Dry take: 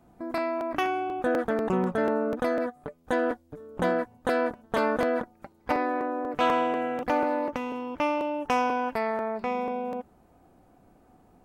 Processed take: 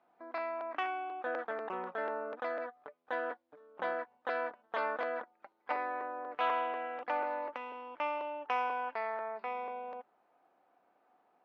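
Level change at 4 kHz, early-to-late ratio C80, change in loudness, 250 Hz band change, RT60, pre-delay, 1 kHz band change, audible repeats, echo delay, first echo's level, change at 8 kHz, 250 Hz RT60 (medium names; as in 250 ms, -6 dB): -9.5 dB, no reverb, -9.0 dB, -21.0 dB, no reverb, no reverb, -7.0 dB, no echo, no echo, no echo, no reading, no reverb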